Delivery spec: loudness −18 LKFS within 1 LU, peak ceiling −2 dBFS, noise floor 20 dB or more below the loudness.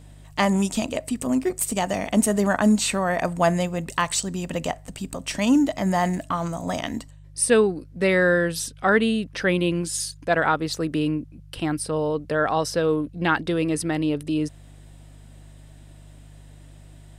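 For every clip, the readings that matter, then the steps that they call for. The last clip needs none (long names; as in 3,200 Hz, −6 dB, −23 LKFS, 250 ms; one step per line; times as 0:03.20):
mains hum 50 Hz; hum harmonics up to 150 Hz; level of the hum −43 dBFS; integrated loudness −23.5 LKFS; sample peak −6.5 dBFS; target loudness −18.0 LKFS
→ hum removal 50 Hz, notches 3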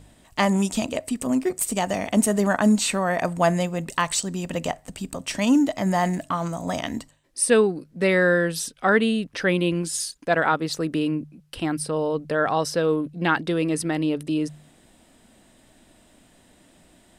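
mains hum none found; integrated loudness −23.5 LKFS; sample peak −6.5 dBFS; target loudness −18.0 LKFS
→ level +5.5 dB
brickwall limiter −2 dBFS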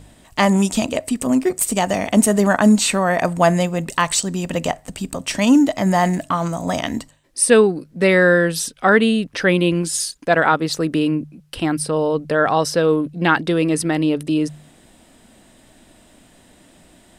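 integrated loudness −18.0 LKFS; sample peak −2.0 dBFS; background noise floor −52 dBFS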